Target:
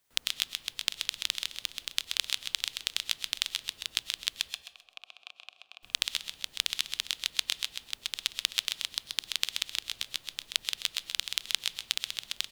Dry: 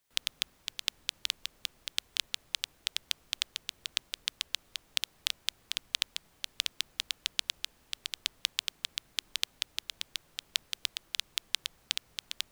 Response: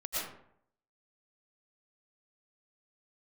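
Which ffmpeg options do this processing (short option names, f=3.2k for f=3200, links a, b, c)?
-filter_complex "[0:a]asettb=1/sr,asplit=3[a][b][c];[a]atrim=end=4.504[d];[b]atrim=start=4.5:end=5.83,asetpts=PTS-STARTPTS,afade=t=in:d=0.004:c=qsin,afade=t=out:st=1.326:d=0.004:c=qsin,asplit=3[e][f][g];[e]bandpass=f=730:t=q:w=8,volume=0dB[h];[f]bandpass=f=1.09k:t=q:w=8,volume=-6dB[i];[g]bandpass=f=2.44k:t=q:w=8,volume=-9dB[j];[h][i][j]amix=inputs=3:normalize=0[k];[c]atrim=start=5.826[l];[d][k]acrossfade=d=0.004:c1=hsin:c2=qsin[m];[m][l]acrossfade=d=0.004:c1=qsin:c2=hsin,aecho=1:1:130|260|390|520:0.562|0.157|0.0441|0.0123,asplit=2[n][o];[1:a]atrim=start_sample=2205,highshelf=f=4.9k:g=6.5[p];[o][p]afir=irnorm=-1:irlink=0,volume=-20dB[q];[n][q]amix=inputs=2:normalize=0,volume=1.5dB"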